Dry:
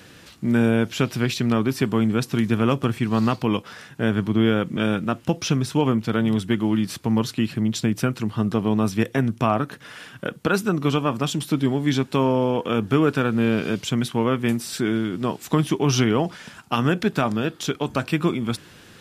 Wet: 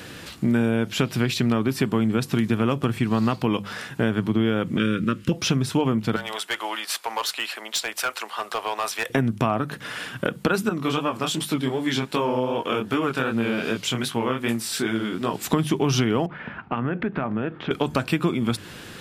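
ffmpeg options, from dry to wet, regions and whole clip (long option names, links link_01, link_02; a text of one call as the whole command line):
ffmpeg -i in.wav -filter_complex "[0:a]asettb=1/sr,asplit=3[link_01][link_02][link_03];[link_01]atrim=end=4.784[link_04];[link_02]atrim=start=4.78:end=5.32,asetpts=PTS-STARTPTS,afade=type=in:duration=0.004:curve=qsin,afade=type=out:start_time=0.536:duration=0.004:curve=qsin,asuperstop=centerf=760:order=4:qfactor=1.1,highshelf=frequency=10000:gain=-6.5[link_05];[link_03]atrim=start=5.316[link_06];[link_04][link_05]acrossfade=duration=0.004:curve1=hsin:curve2=qsin[link_07];[link_07][link_06]acrossfade=duration=0.004:curve1=qsin:curve2=hsin,asettb=1/sr,asplit=3[link_08][link_09][link_10];[link_08]atrim=end=6.164[link_11];[link_09]atrim=start=6.16:end=9.1,asetpts=PTS-STARTPTS,afade=type=in:duration=0.004:curve=qsin,afade=type=out:start_time=2.936:duration=0.004:curve=qsin,highpass=frequency=630:width=0.5412,highpass=frequency=630:width=1.3066,volume=25.5dB,asoftclip=hard,volume=-25.5dB[link_12];[link_10]atrim=start=9.096[link_13];[link_11][link_12]acrossfade=duration=0.004:curve1=hsin:curve2=qsin[link_14];[link_14][link_13]acrossfade=duration=0.004:curve1=qsin:curve2=hsin,asettb=1/sr,asplit=3[link_15][link_16][link_17];[link_15]atrim=end=10.694[link_18];[link_16]atrim=start=10.69:end=15.34,asetpts=PTS-STARTPTS,afade=type=in:duration=0.004:curve=qsin,afade=type=out:start_time=4.646:duration=0.004:curve=qsin,lowshelf=frequency=340:gain=-9,flanger=delay=17:depth=6.9:speed=2.6[link_19];[link_17]atrim=start=15.336[link_20];[link_18][link_19]acrossfade=duration=0.004:curve1=hsin:curve2=qsin[link_21];[link_21][link_20]acrossfade=duration=0.004:curve1=qsin:curve2=hsin,asettb=1/sr,asplit=3[link_22][link_23][link_24];[link_22]atrim=end=16.264[link_25];[link_23]atrim=start=16.26:end=17.71,asetpts=PTS-STARTPTS,afade=type=in:duration=0.004:curve=qsin,afade=type=out:start_time=1.446:duration=0.004:curve=qsin,lowpass=frequency=2300:width=0.5412,lowpass=frequency=2300:width=1.3066,acompressor=threshold=-32dB:ratio=2.5:attack=3.2:release=140:knee=1:detection=peak[link_26];[link_24]atrim=start=17.706[link_27];[link_25][link_26]acrossfade=duration=0.004:curve1=hsin:curve2=qsin[link_28];[link_28][link_27]acrossfade=duration=0.004:curve1=qsin:curve2=hsin,equalizer=frequency=5900:width_type=o:width=0.35:gain=-3,bandreject=frequency=50:width_type=h:width=6,bandreject=frequency=100:width_type=h:width=6,bandreject=frequency=150:width_type=h:width=6,bandreject=frequency=200:width_type=h:width=6,acompressor=threshold=-28dB:ratio=3,volume=7.5dB" out.wav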